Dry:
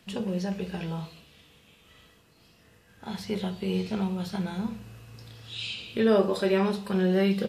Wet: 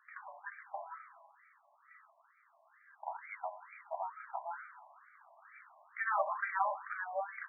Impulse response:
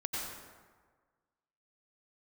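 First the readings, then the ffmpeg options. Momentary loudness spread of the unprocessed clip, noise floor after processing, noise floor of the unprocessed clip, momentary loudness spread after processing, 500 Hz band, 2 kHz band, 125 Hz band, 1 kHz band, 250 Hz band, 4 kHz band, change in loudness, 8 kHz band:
20 LU, -70 dBFS, -60 dBFS, 23 LU, -16.5 dB, -2.0 dB, under -40 dB, +1.0 dB, under -40 dB, under -40 dB, -11.0 dB, under -30 dB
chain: -filter_complex "[0:a]asplit=2[s0][s1];[s1]highshelf=f=4600:t=q:w=1.5:g=-8[s2];[1:a]atrim=start_sample=2205[s3];[s2][s3]afir=irnorm=-1:irlink=0,volume=0.126[s4];[s0][s4]amix=inputs=2:normalize=0,afftfilt=real='re*between(b*sr/1024,790*pow(1700/790,0.5+0.5*sin(2*PI*2.2*pts/sr))/1.41,790*pow(1700/790,0.5+0.5*sin(2*PI*2.2*pts/sr))*1.41)':imag='im*between(b*sr/1024,790*pow(1700/790,0.5+0.5*sin(2*PI*2.2*pts/sr))/1.41,790*pow(1700/790,0.5+0.5*sin(2*PI*2.2*pts/sr))*1.41)':win_size=1024:overlap=0.75,volume=1.19"

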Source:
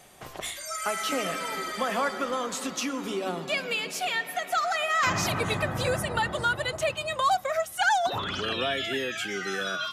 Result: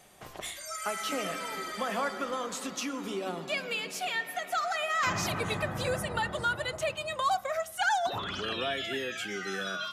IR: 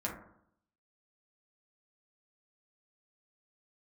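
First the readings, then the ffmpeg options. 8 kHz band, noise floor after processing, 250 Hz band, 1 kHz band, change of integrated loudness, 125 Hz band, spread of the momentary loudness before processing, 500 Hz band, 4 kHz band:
-4.0 dB, -45 dBFS, -4.0 dB, -4.0 dB, -4.0 dB, -4.5 dB, 7 LU, -4.0 dB, -4.0 dB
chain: -filter_complex "[0:a]asplit=2[s0][s1];[1:a]atrim=start_sample=2205[s2];[s1][s2]afir=irnorm=-1:irlink=0,volume=0.133[s3];[s0][s3]amix=inputs=2:normalize=0,volume=0.562"

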